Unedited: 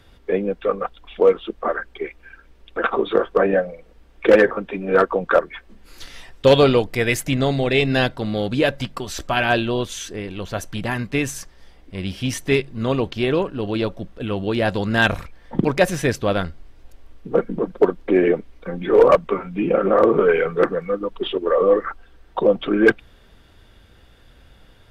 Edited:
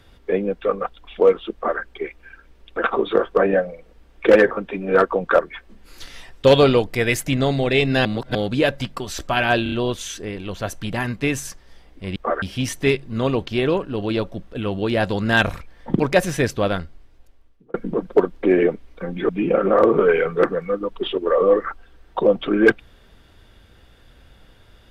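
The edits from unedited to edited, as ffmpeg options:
ffmpeg -i in.wav -filter_complex "[0:a]asplit=10[link_01][link_02][link_03][link_04][link_05][link_06][link_07][link_08][link_09][link_10];[link_01]atrim=end=8.052[link_11];[link_02]atrim=start=8.048:end=8.352,asetpts=PTS-STARTPTS,areverse[link_12];[link_03]atrim=start=8.348:end=9.662[link_13];[link_04]atrim=start=9.628:end=9.662[link_14];[link_05]atrim=start=9.628:end=9.662[link_15];[link_06]atrim=start=9.628:end=12.072[link_16];[link_07]atrim=start=1.538:end=1.802[link_17];[link_08]atrim=start=12.068:end=17.39,asetpts=PTS-STARTPTS,afade=type=out:start_time=4.182:duration=1.14[link_18];[link_09]atrim=start=17.39:end=18.942,asetpts=PTS-STARTPTS,afade=type=in:duration=0.004:curve=hsin[link_19];[link_10]atrim=start=19.488[link_20];[link_11][link_12]acrossfade=duration=0.004:curve1=hsin:curve2=hsin[link_21];[link_21][link_13]acrossfade=duration=0.004:curve1=hsin:curve2=hsin[link_22];[link_22][link_14]acrossfade=duration=0.004:curve1=hsin:curve2=hsin[link_23];[link_23][link_15]acrossfade=duration=0.004:curve1=hsin:curve2=hsin[link_24];[link_24][link_16]acrossfade=duration=0.004:curve1=hsin:curve2=hsin[link_25];[link_25][link_17]acrossfade=duration=0.004:curve1=hsin:curve2=hsin[link_26];[link_18][link_19]concat=n=2:v=0:a=1[link_27];[link_26][link_27]acrossfade=duration=0.004:curve1=hsin:curve2=hsin[link_28];[link_28][link_20]acrossfade=duration=0.004:curve1=hsin:curve2=hsin" out.wav

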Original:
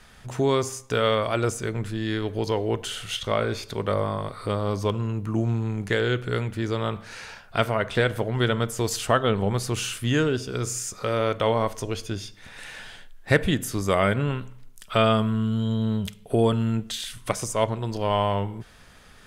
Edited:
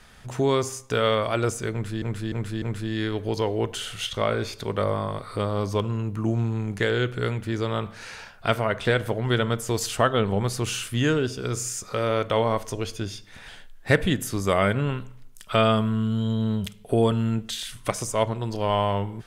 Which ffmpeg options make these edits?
ffmpeg -i in.wav -filter_complex "[0:a]asplit=5[link_01][link_02][link_03][link_04][link_05];[link_01]atrim=end=2.022[link_06];[link_02]atrim=start=1.718:end=2.022[link_07];[link_03]atrim=start=1.718:end=2.022[link_08];[link_04]atrim=start=1.718:end=12.582[link_09];[link_05]atrim=start=12.888[link_10];[link_06][link_07]acrossfade=duration=0.004:curve1=hsin:curve2=hsin[link_11];[link_11][link_08]acrossfade=duration=0.004:curve1=hsin:curve2=hsin[link_12];[link_12][link_09]acrossfade=duration=0.004:curve1=hsin:curve2=hsin[link_13];[link_13][link_10]acrossfade=duration=0.004:curve1=hsin:curve2=hsin" out.wav

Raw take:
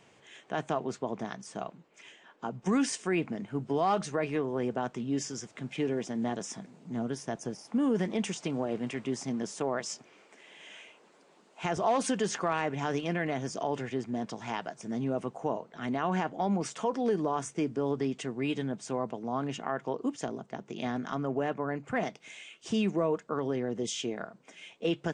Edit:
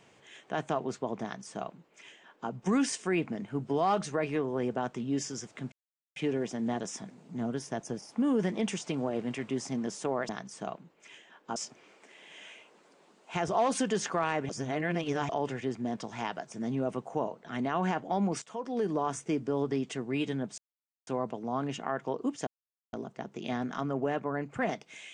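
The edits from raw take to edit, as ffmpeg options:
ffmpeg -i in.wav -filter_complex "[0:a]asplit=9[link_01][link_02][link_03][link_04][link_05][link_06][link_07][link_08][link_09];[link_01]atrim=end=5.72,asetpts=PTS-STARTPTS,afade=type=out:start_time=5.716:duration=0.004:curve=hsin,apad=pad_dur=0.44[link_10];[link_02]atrim=start=5.72:end=9.852,asetpts=PTS-STARTPTS,afade=type=in:duration=0.004:curve=hsin[link_11];[link_03]atrim=start=1.228:end=2.502[link_12];[link_04]atrim=start=9.848:end=12.782[link_13];[link_05]atrim=start=12.778:end=13.582,asetpts=PTS-STARTPTS,areverse[link_14];[link_06]atrim=start=13.578:end=16.71,asetpts=PTS-STARTPTS,afade=type=out:start_time=3.128:duration=0.004:curve=hsin:silence=0.199526[link_15];[link_07]atrim=start=16.71:end=18.87,asetpts=PTS-STARTPTS,afade=type=in:duration=0.56:silence=0.199526,afade=type=out:start_time=2.156:duration=0.004:curve=hsin,apad=pad_dur=0.49[link_16];[link_08]atrim=start=18.87:end=20.27,asetpts=PTS-STARTPTS,afade=type=in:duration=0.004:curve=hsin,afade=type=out:start_time=1.396:duration=0.004:curve=hsin,apad=pad_dur=0.46[link_17];[link_09]atrim=start=20.27,asetpts=PTS-STARTPTS,afade=type=in:duration=0.004:curve=hsin[link_18];[link_10][link_11]concat=n=2:v=0:a=1[link_19];[link_19][link_12]acrossfade=duration=0.004:curve1=hsin:curve2=hsin[link_20];[link_20][link_13]acrossfade=duration=0.004:curve1=hsin:curve2=hsin[link_21];[link_21][link_14]acrossfade=duration=0.004:curve1=hsin:curve2=hsin[link_22];[link_15][link_16][link_17][link_18]concat=n=4:v=0:a=1[link_23];[link_22][link_23]acrossfade=duration=0.004:curve1=hsin:curve2=hsin" out.wav

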